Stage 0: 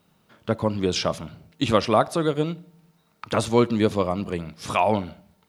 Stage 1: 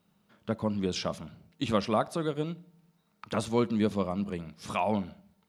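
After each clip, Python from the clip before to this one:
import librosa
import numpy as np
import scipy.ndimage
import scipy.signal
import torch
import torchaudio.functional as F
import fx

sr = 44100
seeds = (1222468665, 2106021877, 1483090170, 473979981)

y = fx.peak_eq(x, sr, hz=200.0, db=8.0, octaves=0.26)
y = F.gain(torch.from_numpy(y), -8.5).numpy()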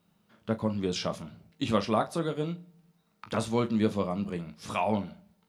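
y = fx.room_early_taps(x, sr, ms=(18, 40), db=(-9.5, -14.0))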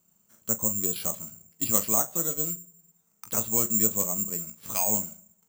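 y = (np.kron(scipy.signal.resample_poly(x, 1, 6), np.eye(6)[0]) * 6)[:len(x)]
y = F.gain(torch.from_numpy(y), -5.5).numpy()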